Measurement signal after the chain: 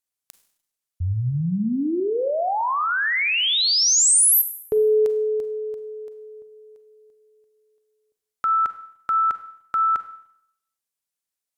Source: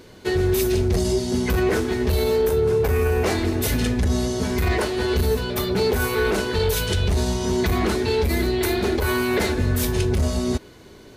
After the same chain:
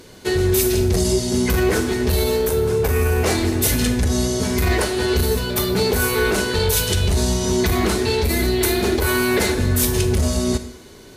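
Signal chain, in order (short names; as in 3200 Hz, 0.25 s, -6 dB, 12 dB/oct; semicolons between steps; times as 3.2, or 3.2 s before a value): bell 9800 Hz +7.5 dB 1.8 oct; Schroeder reverb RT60 0.72 s, combs from 33 ms, DRR 10 dB; gain +1.5 dB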